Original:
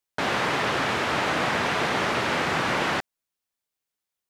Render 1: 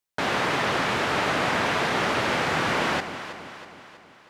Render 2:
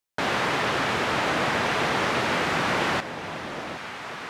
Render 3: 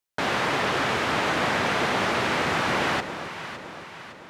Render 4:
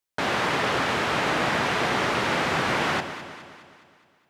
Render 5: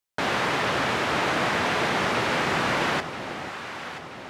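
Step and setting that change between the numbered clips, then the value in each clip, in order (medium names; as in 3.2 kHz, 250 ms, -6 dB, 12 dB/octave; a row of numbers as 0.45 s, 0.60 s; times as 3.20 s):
echo whose repeats swap between lows and highs, time: 161 ms, 763 ms, 280 ms, 104 ms, 490 ms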